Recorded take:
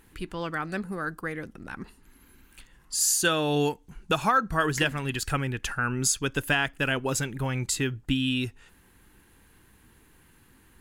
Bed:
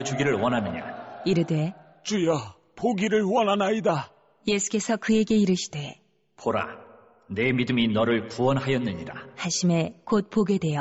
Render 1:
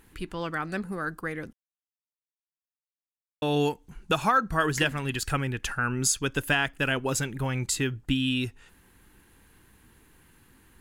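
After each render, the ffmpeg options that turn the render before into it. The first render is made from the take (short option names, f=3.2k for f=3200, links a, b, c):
-filter_complex "[0:a]asplit=3[a][b][c];[a]atrim=end=1.53,asetpts=PTS-STARTPTS,afade=t=out:st=1.526:d=0.004:c=hsin[d];[b]atrim=start=1.53:end=3.42,asetpts=PTS-STARTPTS,volume=0[e];[c]atrim=start=3.42,asetpts=PTS-STARTPTS,afade=t=in:d=0.004:c=hsin[f];[d][e][f]concat=n=3:v=0:a=1"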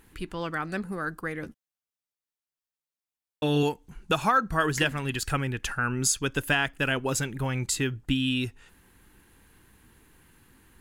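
-filter_complex "[0:a]asettb=1/sr,asplit=3[a][b][c];[a]atrim=end=1.414[d];[b]atrim=start=1.41:end=3.63,asetpts=PTS-STARTPTS,afade=t=in:d=0.004:c=qsin,afade=t=out:st=2.216:d=0.004:c=qsin,asplit=2[e][f];[f]adelay=13,volume=-5.5dB[g];[e][g]amix=inputs=2:normalize=0,atrim=end_sample=97902[h];[c]atrim=start=3.626[i];[d][h]acrossfade=d=0.004:c1=hsin:c2=qsin[j];[j][i]acrossfade=d=0.004:c1=qsin:c2=hsin"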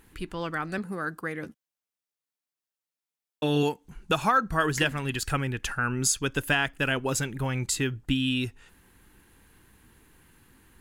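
-filter_complex "[0:a]asettb=1/sr,asplit=3[a][b][c];[a]atrim=end=0.784[d];[b]atrim=start=0.78:end=3.85,asetpts=PTS-STARTPTS,afade=t=in:d=0.004:c=qsin,afade=t=out:st=3.066:d=0.004:c=qsin,highpass=110[e];[c]atrim=start=3.846[f];[d][e]acrossfade=d=0.004:c1=hsin:c2=qsin[g];[g][f]acrossfade=d=0.004:c1=qsin:c2=hsin"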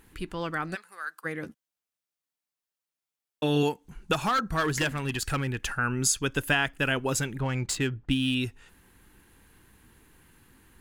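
-filter_complex "[0:a]asplit=3[a][b][c];[a]afade=t=out:st=0.74:d=0.02[d];[b]highpass=1.4k,afade=t=in:st=0.74:d=0.02,afade=t=out:st=1.24:d=0.02[e];[c]afade=t=in:st=1.24:d=0.02[f];[d][e][f]amix=inputs=3:normalize=0,asettb=1/sr,asplit=3[g][h][i];[g]atrim=end=4.134[j];[h]atrim=start=4.13:end=5.71,asetpts=PTS-STARTPTS,afade=t=in:d=0.004:c=qsin,afade=t=out:st=1.576:d=0.004:c=qsin,asoftclip=type=hard:threshold=-21.5dB[k];[i]atrim=start=5.706[l];[j][k]acrossfade=d=0.004:c1=hsin:c2=qsin[m];[m][l]acrossfade=d=0.004:c1=qsin:c2=hsin,asettb=1/sr,asplit=3[n][o][p];[n]atrim=end=7.394[q];[o]atrim=start=7.39:end=8.35,asetpts=PTS-STARTPTS,afade=t=in:d=0.004:c=qsin,afade=t=out:st=0.956:d=0.004:c=qsin,adynamicsmooth=sensitivity=8:basefreq=3.1k[r];[p]atrim=start=8.346[s];[q][r]acrossfade=d=0.004:c1=hsin:c2=qsin[t];[t][s]acrossfade=d=0.004:c1=qsin:c2=hsin"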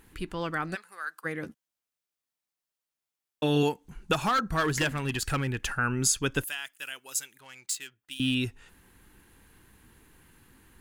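-filter_complex "[0:a]asettb=1/sr,asplit=3[a][b][c];[a]atrim=end=6.444[d];[b]atrim=start=6.44:end=8.2,asetpts=PTS-STARTPTS,afade=t=in:d=0.004:c=qsin,afade=t=out:st=1.756:d=0.004:c=qsin,aderivative[e];[c]atrim=start=8.196[f];[d][e]acrossfade=d=0.004:c1=hsin:c2=qsin[g];[g][f]acrossfade=d=0.004:c1=qsin:c2=hsin"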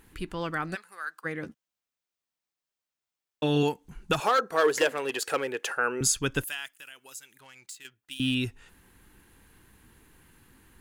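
-filter_complex "[0:a]asettb=1/sr,asplit=3[a][b][c];[a]atrim=end=1.094[d];[b]atrim=start=1.09:end=3.68,asetpts=PTS-STARTPTS,afade=t=in:d=0.004:c=qsin,afade=t=out:st=2.586:d=0.004:c=qsin,equalizer=f=12k:w=1.3:g=-8.5[e];[c]atrim=start=3.676[f];[d][e]acrossfade=d=0.004:c1=hsin:c2=qsin[g];[g][f]acrossfade=d=0.004:c1=qsin:c2=hsin,asettb=1/sr,asplit=3[h][i][j];[h]atrim=end=4.204[k];[i]atrim=start=4.2:end=6.01,asetpts=PTS-STARTPTS,afade=t=in:d=0.004:c=qsin,afade=t=out:st=1.806:d=0.004:c=qsin,highpass=f=470:t=q:w=3.7[l];[j]atrim=start=6.006[m];[k][l]acrossfade=d=0.004:c1=hsin:c2=qsin[n];[n][m]acrossfade=d=0.004:c1=qsin:c2=hsin,asettb=1/sr,asplit=3[o][p][q];[o]atrim=end=6.684[r];[p]atrim=start=6.68:end=7.85,asetpts=PTS-STARTPTS,afade=t=in:d=0.004:c=qsin,afade=t=out:st=1.166:d=0.004:c=qsin,acompressor=threshold=-48dB:ratio=2:attack=3.2:release=140:knee=1:detection=peak[s];[q]atrim=start=7.846[t];[r][s]acrossfade=d=0.004:c1=hsin:c2=qsin[u];[u][t]acrossfade=d=0.004:c1=qsin:c2=hsin"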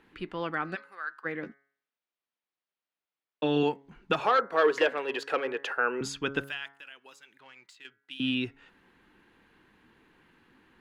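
-filter_complex "[0:a]acrossover=split=170 4200:gain=0.178 1 0.0631[a][b][c];[a][b][c]amix=inputs=3:normalize=0,bandreject=f=138.4:t=h:w=4,bandreject=f=276.8:t=h:w=4,bandreject=f=415.2:t=h:w=4,bandreject=f=553.6:t=h:w=4,bandreject=f=692:t=h:w=4,bandreject=f=830.4:t=h:w=4,bandreject=f=968.8:t=h:w=4,bandreject=f=1.1072k:t=h:w=4,bandreject=f=1.2456k:t=h:w=4,bandreject=f=1.384k:t=h:w=4,bandreject=f=1.5224k:t=h:w=4,bandreject=f=1.6608k:t=h:w=4,bandreject=f=1.7992k:t=h:w=4,bandreject=f=1.9376k:t=h:w=4,bandreject=f=2.076k:t=h:w=4,bandreject=f=2.2144k:t=h:w=4"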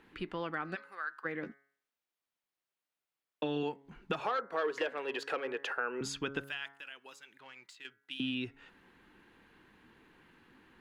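-af "acompressor=threshold=-35dB:ratio=2.5"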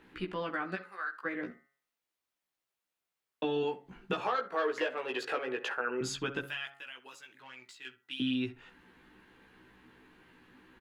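-filter_complex "[0:a]asplit=2[a][b];[b]adelay=16,volume=-2.5dB[c];[a][c]amix=inputs=2:normalize=0,asplit=2[d][e];[e]adelay=66,lowpass=f=2.1k:p=1,volume=-15dB,asplit=2[f][g];[g]adelay=66,lowpass=f=2.1k:p=1,volume=0.23[h];[d][f][h]amix=inputs=3:normalize=0"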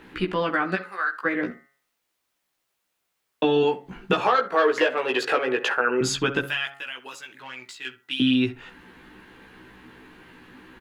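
-af "volume=11.5dB"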